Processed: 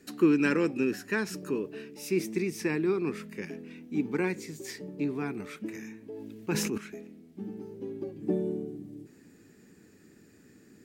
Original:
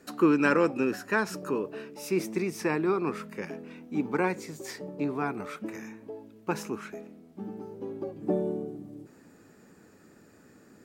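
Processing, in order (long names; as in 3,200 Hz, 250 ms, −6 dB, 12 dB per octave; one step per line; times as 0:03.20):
flat-topped bell 860 Hz −9.5 dB
0:06.10–0:06.78: level that may fall only so fast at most 25 dB per second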